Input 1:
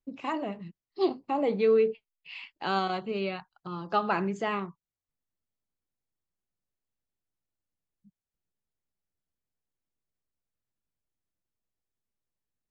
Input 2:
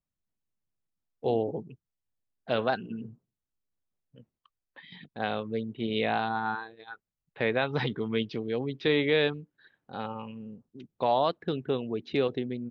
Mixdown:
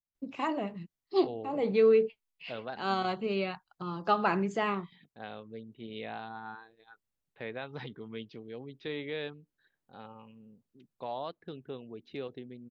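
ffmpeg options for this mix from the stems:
-filter_complex "[0:a]adelay=150,volume=1[s0];[1:a]volume=0.237,asplit=2[s1][s2];[s2]apad=whole_len=566756[s3];[s0][s3]sidechaincompress=threshold=0.00501:ratio=8:attack=16:release=238[s4];[s4][s1]amix=inputs=2:normalize=0"

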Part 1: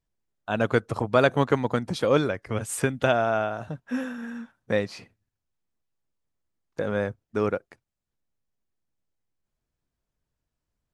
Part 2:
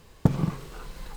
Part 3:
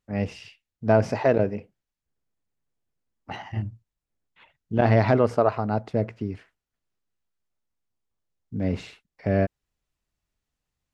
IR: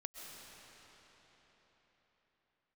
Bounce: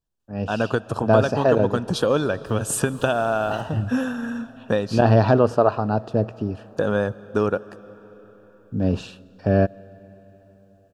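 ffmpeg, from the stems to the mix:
-filter_complex "[0:a]acompressor=threshold=0.0708:ratio=6,volume=0.708,asplit=3[s0][s1][s2];[s1]volume=0.266[s3];[1:a]lowshelf=f=330:g=-11,acompressor=threshold=0.0158:ratio=6,adelay=2450,volume=0.631,asplit=2[s4][s5];[s5]volume=0.422[s6];[2:a]adelay=200,volume=0.562,asplit=2[s7][s8];[s8]volume=0.141[s9];[s2]apad=whole_len=159407[s10];[s4][s10]sidechaincompress=threshold=0.00794:ratio=8:attack=16:release=175[s11];[3:a]atrim=start_sample=2205[s12];[s3][s6][s9]amix=inputs=3:normalize=0[s13];[s13][s12]afir=irnorm=-1:irlink=0[s14];[s0][s11][s7][s14]amix=inputs=4:normalize=0,asuperstop=centerf=2100:order=4:qfactor=2.9,dynaudnorm=f=330:g=3:m=2.82"

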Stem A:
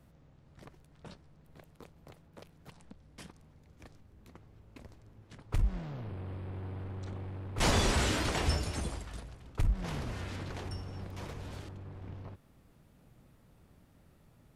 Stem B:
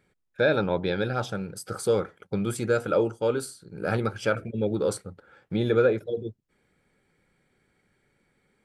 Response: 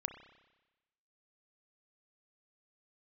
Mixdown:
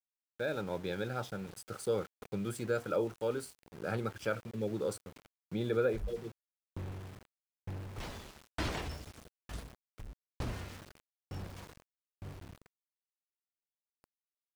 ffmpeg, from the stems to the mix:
-filter_complex "[0:a]acrossover=split=5500[s0][s1];[s1]acompressor=threshold=0.00316:ratio=4:attack=1:release=60[s2];[s0][s2]amix=inputs=2:normalize=0,alimiter=level_in=1.26:limit=0.0631:level=0:latency=1:release=88,volume=0.794,aeval=exprs='val(0)*pow(10,-28*if(lt(mod(1.1*n/s,1),2*abs(1.1)/1000),1-mod(1.1*n/s,1)/(2*abs(1.1)/1000),(mod(1.1*n/s,1)-2*abs(1.1)/1000)/(1-2*abs(1.1)/1000))/20)':c=same,adelay=400,volume=1.41[s3];[1:a]highpass=f=52:w=0.5412,highpass=f=52:w=1.3066,dynaudnorm=f=160:g=9:m=1.88,volume=0.188,asplit=2[s4][s5];[s5]apad=whole_len=659595[s6];[s3][s6]sidechaincompress=threshold=0.00398:ratio=5:attack=16:release=107[s7];[s7][s4]amix=inputs=2:normalize=0,aeval=exprs='val(0)*gte(abs(val(0)),0.00398)':c=same"

